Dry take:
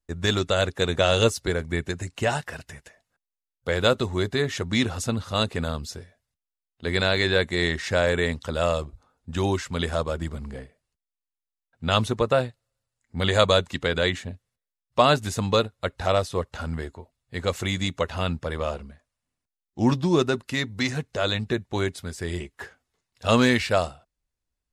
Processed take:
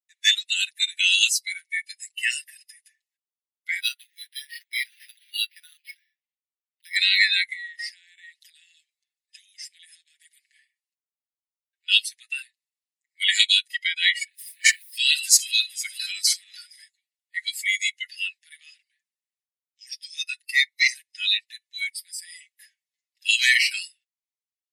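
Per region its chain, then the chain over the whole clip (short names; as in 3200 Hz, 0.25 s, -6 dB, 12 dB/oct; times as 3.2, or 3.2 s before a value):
3.8–6.96 dynamic EQ 2100 Hz, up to -6 dB, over -45 dBFS, Q 4.4 + decimation joined by straight lines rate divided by 6×
7.52–10.34 low shelf 160 Hz -10.5 dB + compressor, threshold -33 dBFS
14.21–16.82 regenerating reverse delay 0.232 s, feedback 60%, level -12 dB + notch 2800 Hz, Q 24 + backwards sustainer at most 25 dB/s
whole clip: steep high-pass 1800 Hz 96 dB/oct; spectral noise reduction 19 dB; comb 6.3 ms, depth 90%; gain +7.5 dB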